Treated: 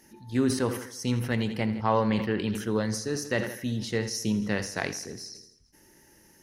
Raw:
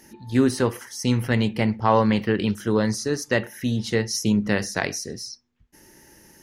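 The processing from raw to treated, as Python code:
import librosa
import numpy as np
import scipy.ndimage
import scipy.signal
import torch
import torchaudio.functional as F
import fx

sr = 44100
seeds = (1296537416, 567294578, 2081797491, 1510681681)

y = fx.echo_feedback(x, sr, ms=83, feedback_pct=57, wet_db=-15)
y = fx.sustainer(y, sr, db_per_s=83.0)
y = F.gain(torch.from_numpy(y), -6.5).numpy()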